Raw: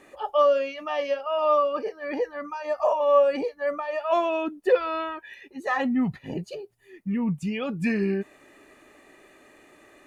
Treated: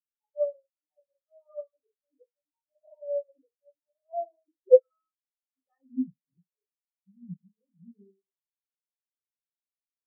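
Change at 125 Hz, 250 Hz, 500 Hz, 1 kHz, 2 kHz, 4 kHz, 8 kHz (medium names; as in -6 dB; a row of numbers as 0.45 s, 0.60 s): under -15 dB, -13.0 dB, -5.5 dB, under -20 dB, under -40 dB, under -40 dB, no reading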